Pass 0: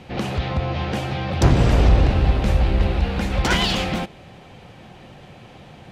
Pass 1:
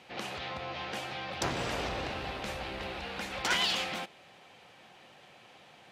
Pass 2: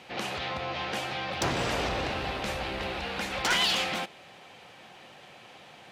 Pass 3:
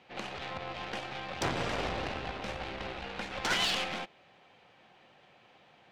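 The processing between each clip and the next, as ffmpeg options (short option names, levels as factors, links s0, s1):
-af "highpass=f=1000:p=1,volume=0.501"
-af "asoftclip=type=tanh:threshold=0.0668,volume=1.88"
-af "aeval=exprs='0.126*(cos(1*acos(clip(val(0)/0.126,-1,1)))-cos(1*PI/2))+0.0398*(cos(4*acos(clip(val(0)/0.126,-1,1)))-cos(4*PI/2))+0.0562*(cos(6*acos(clip(val(0)/0.126,-1,1)))-cos(6*PI/2))+0.00891*(cos(7*acos(clip(val(0)/0.126,-1,1)))-cos(7*PI/2))+0.02*(cos(8*acos(clip(val(0)/0.126,-1,1)))-cos(8*PI/2))':c=same,adynamicsmooth=sensitivity=1.5:basefreq=5200,volume=0.668"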